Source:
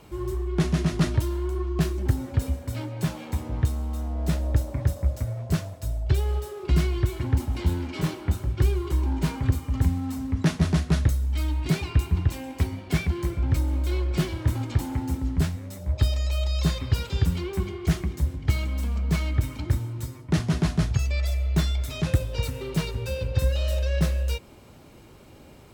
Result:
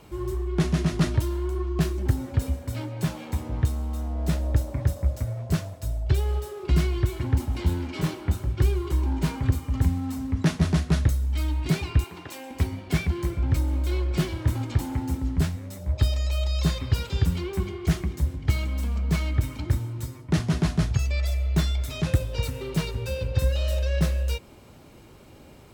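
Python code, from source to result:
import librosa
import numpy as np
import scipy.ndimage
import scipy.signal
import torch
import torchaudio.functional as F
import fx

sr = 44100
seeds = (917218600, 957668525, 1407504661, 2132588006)

y = fx.highpass(x, sr, hz=390.0, slope=12, at=(12.04, 12.51))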